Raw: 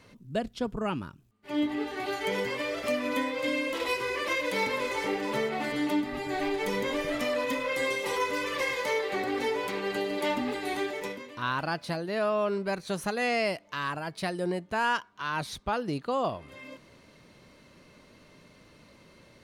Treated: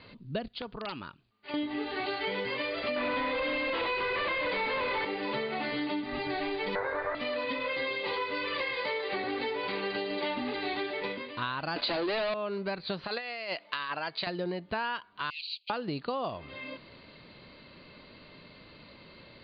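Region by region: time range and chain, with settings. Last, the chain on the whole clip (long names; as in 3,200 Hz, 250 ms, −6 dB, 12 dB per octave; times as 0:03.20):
0:00.48–0:01.54: low-shelf EQ 380 Hz −11.5 dB + downward compressor 2.5 to 1, threshold −39 dBFS + wrap-around overflow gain 31.5 dB
0:02.96–0:05.05: mu-law and A-law mismatch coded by mu + mid-hump overdrive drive 23 dB, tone 1,700 Hz, clips at −16 dBFS + high-frequency loss of the air 75 metres
0:06.75–0:07.15: lower of the sound and its delayed copy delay 0.49 ms + drawn EQ curve 130 Hz 0 dB, 200 Hz −20 dB, 450 Hz +11 dB, 1,600 Hz +13 dB, 2,900 Hz −12 dB
0:11.76–0:12.34: Butterworth high-pass 230 Hz 48 dB per octave + leveller curve on the samples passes 5
0:13.04–0:14.27: high-pass filter 700 Hz 6 dB per octave + compressor whose output falls as the input rises −35 dBFS, ratio −0.5
0:15.30–0:15.70: lower of the sound and its delayed copy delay 0.7 ms + Butterworth high-pass 2,300 Hz 96 dB per octave
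whole clip: Chebyshev low-pass filter 4,700 Hz, order 8; high-shelf EQ 3,400 Hz +8.5 dB; downward compressor, threshold −33 dBFS; level +3 dB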